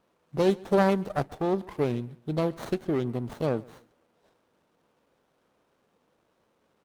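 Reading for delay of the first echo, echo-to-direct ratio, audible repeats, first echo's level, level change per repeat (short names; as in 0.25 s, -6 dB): 0.135 s, -23.5 dB, 2, -24.0 dB, -8.5 dB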